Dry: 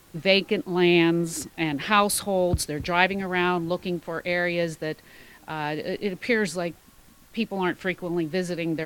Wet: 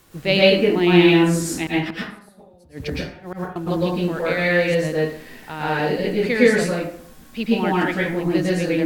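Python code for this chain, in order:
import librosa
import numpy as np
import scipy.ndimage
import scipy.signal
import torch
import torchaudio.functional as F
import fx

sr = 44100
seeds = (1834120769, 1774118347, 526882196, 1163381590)

y = fx.gate_flip(x, sr, shuts_db=-18.0, range_db=-35, at=(1.66, 3.56))
y = fx.rev_plate(y, sr, seeds[0], rt60_s=0.59, hf_ratio=0.6, predelay_ms=100, drr_db=-6.0)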